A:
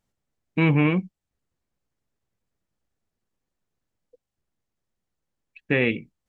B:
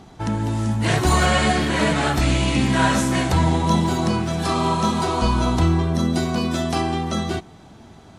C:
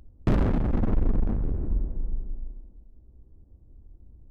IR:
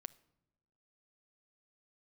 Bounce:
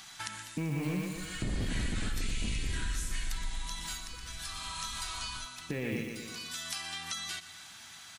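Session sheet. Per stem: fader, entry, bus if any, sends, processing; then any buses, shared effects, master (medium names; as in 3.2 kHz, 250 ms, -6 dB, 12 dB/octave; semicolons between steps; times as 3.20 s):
-3.0 dB, 0.00 s, bus A, no send, echo send -6.5 dB, modulation noise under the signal 20 dB; transient shaper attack -6 dB, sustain +7 dB
-12.5 dB, 0.00 s, no bus, send -9.5 dB, echo send -14.5 dB, tilt EQ +3 dB/octave; compression, threshold -30 dBFS, peak gain reduction 15 dB; FFT filter 150 Hz 0 dB, 450 Hz -11 dB, 1.6 kHz +13 dB; auto duck -20 dB, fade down 0.20 s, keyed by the first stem
-3.0 dB, 1.15 s, bus A, no send, no echo send, none
bus A: 0.0 dB, bass shelf 470 Hz +8.5 dB; peak limiter -18.5 dBFS, peak gain reduction 10.5 dB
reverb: on, pre-delay 7 ms
echo: feedback delay 121 ms, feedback 43%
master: compression 2:1, threshold -38 dBFS, peak gain reduction 10.5 dB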